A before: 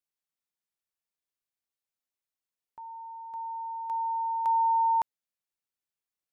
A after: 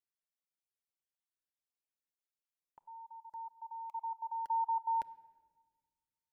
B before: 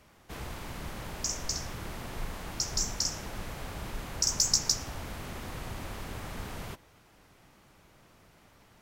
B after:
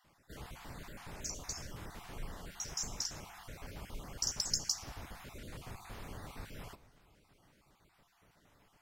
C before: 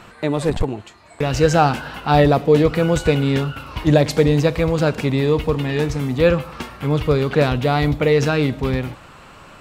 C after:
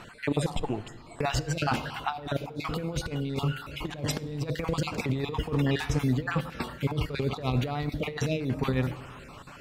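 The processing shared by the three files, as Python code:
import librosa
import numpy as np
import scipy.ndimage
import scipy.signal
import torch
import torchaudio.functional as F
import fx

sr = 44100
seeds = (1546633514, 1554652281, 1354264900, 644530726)

y = fx.spec_dropout(x, sr, seeds[0], share_pct=29)
y = fx.over_compress(y, sr, threshold_db=-21.0, ratio=-0.5)
y = fx.room_shoebox(y, sr, seeds[1], volume_m3=1700.0, walls='mixed', distance_m=0.31)
y = y * librosa.db_to_amplitude(-7.0)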